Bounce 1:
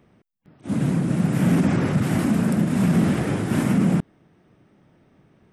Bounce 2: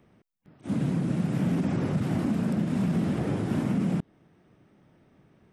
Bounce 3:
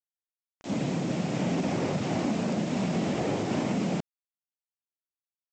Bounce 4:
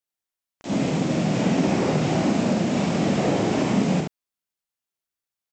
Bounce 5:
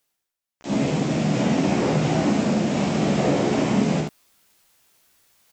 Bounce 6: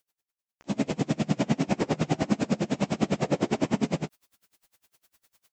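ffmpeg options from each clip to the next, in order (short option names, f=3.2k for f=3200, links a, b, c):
-filter_complex "[0:a]acrossover=split=1200|2600|5600[a][b][c][d];[a]acompressor=threshold=-20dB:ratio=4[e];[b]acompressor=threshold=-51dB:ratio=4[f];[c]acompressor=threshold=-48dB:ratio=4[g];[d]acompressor=threshold=-58dB:ratio=4[h];[e][f][g][h]amix=inputs=4:normalize=0,volume=-3dB"
-af "aexciter=amount=3.9:drive=4.4:freq=2.1k,equalizer=f=680:w=0.49:g=14.5,aresample=16000,acrusher=bits=5:mix=0:aa=0.000001,aresample=44100,volume=-8dB"
-af "aecho=1:1:45|71:0.501|0.668,volume=4.5dB"
-filter_complex "[0:a]areverse,acompressor=mode=upward:threshold=-40dB:ratio=2.5,areverse,asplit=2[a][b];[b]adelay=14,volume=-7dB[c];[a][c]amix=inputs=2:normalize=0"
-af "aeval=exprs='val(0)*pow(10,-30*(0.5-0.5*cos(2*PI*9.9*n/s))/20)':c=same"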